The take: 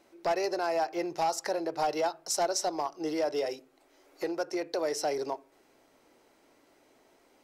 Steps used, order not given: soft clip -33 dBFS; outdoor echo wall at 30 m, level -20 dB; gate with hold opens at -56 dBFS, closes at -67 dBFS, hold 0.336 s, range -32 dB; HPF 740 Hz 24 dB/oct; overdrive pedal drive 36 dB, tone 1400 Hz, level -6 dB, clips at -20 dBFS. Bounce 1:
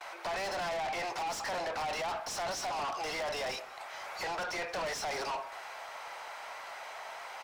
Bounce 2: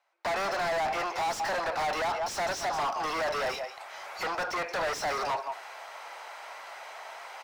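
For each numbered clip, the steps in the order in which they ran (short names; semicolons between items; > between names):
gate with hold > HPF > overdrive pedal > soft clip > outdoor echo; outdoor echo > soft clip > HPF > gate with hold > overdrive pedal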